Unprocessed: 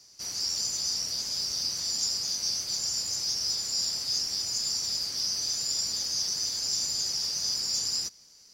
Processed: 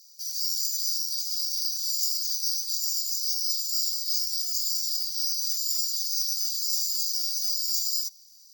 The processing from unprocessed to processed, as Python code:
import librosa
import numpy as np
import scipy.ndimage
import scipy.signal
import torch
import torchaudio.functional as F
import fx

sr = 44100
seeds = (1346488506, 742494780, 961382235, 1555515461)

y = scipy.signal.sosfilt(scipy.signal.cheby2(4, 40, 2000.0, 'highpass', fs=sr, output='sos'), x)
y = (np.kron(scipy.signal.resample_poly(y, 1, 2), np.eye(2)[0]) * 2)[:len(y)]